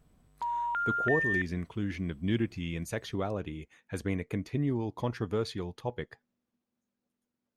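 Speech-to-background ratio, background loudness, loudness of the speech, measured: -3.0 dB, -31.0 LUFS, -34.0 LUFS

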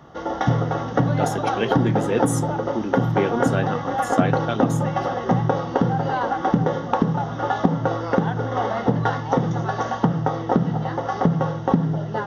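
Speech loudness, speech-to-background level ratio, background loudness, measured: -27.0 LUFS, -4.5 dB, -22.5 LUFS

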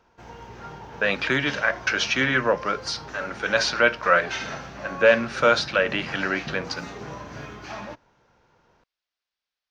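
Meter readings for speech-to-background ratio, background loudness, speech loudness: 15.0 dB, -37.5 LUFS, -22.5 LUFS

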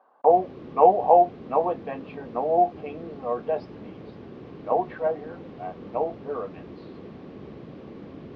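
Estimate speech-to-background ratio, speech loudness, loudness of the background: 18.5 dB, -24.0 LUFS, -42.5 LUFS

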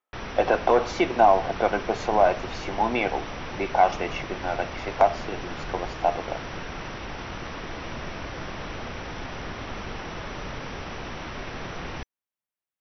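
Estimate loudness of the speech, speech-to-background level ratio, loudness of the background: -24.5 LUFS, 11.0 dB, -35.5 LUFS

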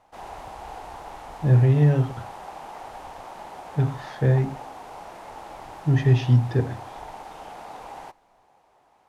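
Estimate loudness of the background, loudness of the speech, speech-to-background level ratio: -40.0 LUFS, -22.0 LUFS, 18.0 dB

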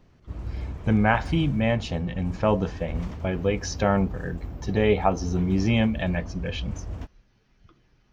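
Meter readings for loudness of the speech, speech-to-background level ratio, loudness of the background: -25.5 LUFS, 11.5 dB, -37.0 LUFS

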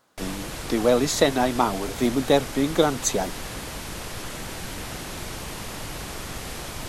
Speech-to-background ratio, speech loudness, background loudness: 11.0 dB, -23.0 LUFS, -34.0 LUFS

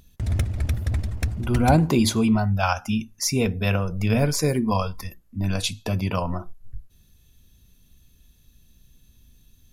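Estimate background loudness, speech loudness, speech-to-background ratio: -27.5 LUFS, -23.0 LUFS, 4.5 dB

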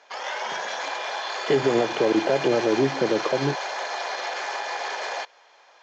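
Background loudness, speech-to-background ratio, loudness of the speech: -29.5 LUFS, 6.0 dB, -23.5 LUFS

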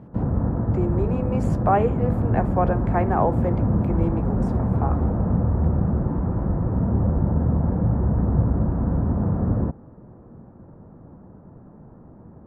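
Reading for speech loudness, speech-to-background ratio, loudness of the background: -27.0 LUFS, -4.0 dB, -23.0 LUFS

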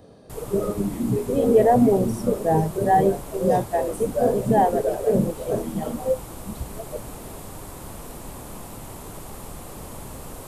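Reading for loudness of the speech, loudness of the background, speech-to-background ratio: -22.0 LUFS, -38.0 LUFS, 16.0 dB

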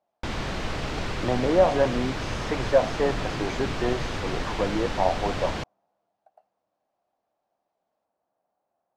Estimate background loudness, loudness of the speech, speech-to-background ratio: -31.5 LUFS, -26.5 LUFS, 5.0 dB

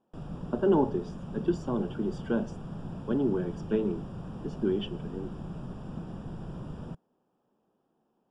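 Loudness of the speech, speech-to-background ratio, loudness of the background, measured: -31.0 LUFS, 10.0 dB, -41.0 LUFS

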